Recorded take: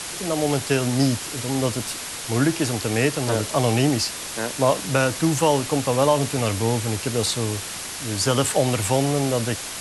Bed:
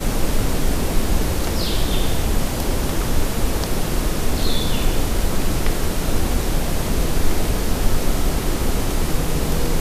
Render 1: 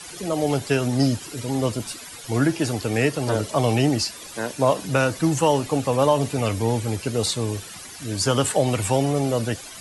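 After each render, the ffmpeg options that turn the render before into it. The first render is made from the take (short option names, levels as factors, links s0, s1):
-af "afftdn=nr=13:nf=-33"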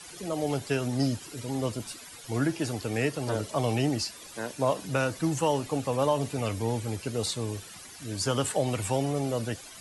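-af "volume=0.447"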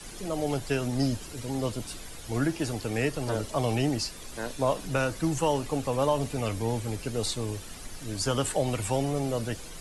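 -filter_complex "[1:a]volume=0.0501[s0];[0:a][s0]amix=inputs=2:normalize=0"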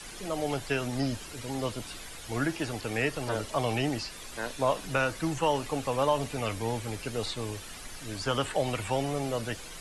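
-filter_complex "[0:a]tiltshelf=f=720:g=-4.5,acrossover=split=3500[s0][s1];[s1]acompressor=threshold=0.00631:ratio=4:attack=1:release=60[s2];[s0][s2]amix=inputs=2:normalize=0"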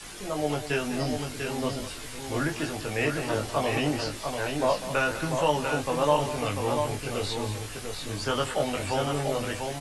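-filter_complex "[0:a]asplit=2[s0][s1];[s1]adelay=20,volume=0.708[s2];[s0][s2]amix=inputs=2:normalize=0,aecho=1:1:198|693:0.237|0.531"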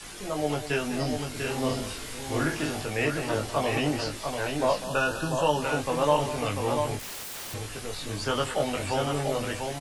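-filter_complex "[0:a]asplit=3[s0][s1][s2];[s0]afade=t=out:st=1.34:d=0.02[s3];[s1]asplit=2[s4][s5];[s5]adelay=46,volume=0.631[s6];[s4][s6]amix=inputs=2:normalize=0,afade=t=in:st=1.34:d=0.02,afade=t=out:st=2.84:d=0.02[s7];[s2]afade=t=in:st=2.84:d=0.02[s8];[s3][s7][s8]amix=inputs=3:normalize=0,asettb=1/sr,asplit=3[s9][s10][s11];[s9]atrim=end=4.844[s12];[s10]atrim=start=4.84:end=5.62,asetpts=PTS-STARTPTS,afade=t=in:d=0.004:c=qsin,afade=t=out:st=0.776:d=0.004:c=qsin,asuperstop=centerf=2100:order=20:qfactor=3.3[s13];[s11]atrim=start=5.616[s14];[s12][s13]acrossfade=d=0.004:c1=hsin:c2=qsin[s15];[s15][s14]acrossfade=d=0.004:c1=qsin:c2=hsin,asettb=1/sr,asplit=3[s16][s17][s18];[s16]atrim=end=6.994[s19];[s17]atrim=start=6.99:end=7.54,asetpts=PTS-STARTPTS,afade=t=in:d=0.004:c=qsin,afade=t=out:st=0.546:d=0.004:c=qsin,aeval=exprs='(mod(47.3*val(0)+1,2)-1)/47.3':c=same[s20];[s18]atrim=start=7.536[s21];[s19][s20]acrossfade=d=0.004:c1=hsin:c2=qsin[s22];[s22][s21]acrossfade=d=0.004:c1=qsin:c2=hsin"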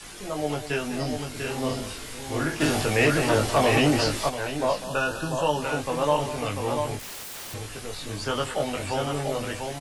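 -filter_complex "[0:a]asplit=3[s0][s1][s2];[s0]afade=t=out:st=2.6:d=0.02[s3];[s1]aeval=exprs='0.211*sin(PI/2*1.58*val(0)/0.211)':c=same,afade=t=in:st=2.6:d=0.02,afade=t=out:st=4.28:d=0.02[s4];[s2]afade=t=in:st=4.28:d=0.02[s5];[s3][s4][s5]amix=inputs=3:normalize=0"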